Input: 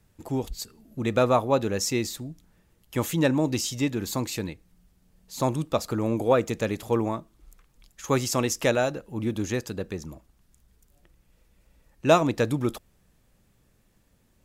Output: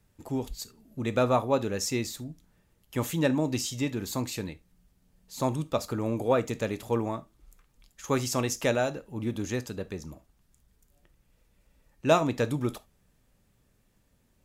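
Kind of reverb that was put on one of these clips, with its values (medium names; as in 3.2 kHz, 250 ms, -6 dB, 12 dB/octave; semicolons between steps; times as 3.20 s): gated-style reverb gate 100 ms falling, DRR 11.5 dB; trim -3.5 dB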